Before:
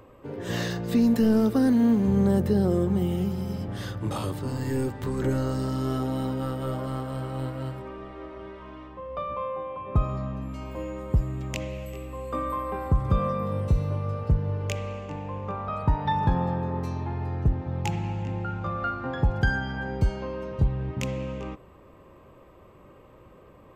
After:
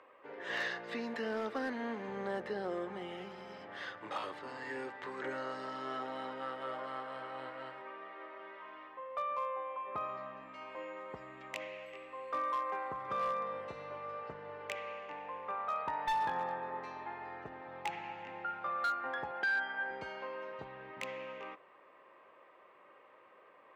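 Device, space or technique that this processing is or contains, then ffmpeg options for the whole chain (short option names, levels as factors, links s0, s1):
megaphone: -filter_complex "[0:a]highpass=670,lowpass=3200,equalizer=f=1900:t=o:w=0.59:g=6,asoftclip=type=hard:threshold=0.0531,asettb=1/sr,asplit=3[s0][s1][s2];[s0]atrim=end=19.314[s3];[s1]atrim=start=19.31:end=19.91,asetpts=PTS-STARTPTS,afade=t=in:d=0.004:c=qsin,afade=t=out:st=0.596:d=0.004:c=qsin,acrossover=split=200 4300:gain=0.158 1 0.178[s4][s5][s6];[s4][s5][s6]amix=inputs=3:normalize=0[s7];[s2]atrim=start=19.906[s8];[s3][s7]acrossfade=d=0.004:c1=hsin:c2=qsin[s9];[s9][s8]acrossfade=d=0.004:c1=qsin:c2=hsin,volume=0.668"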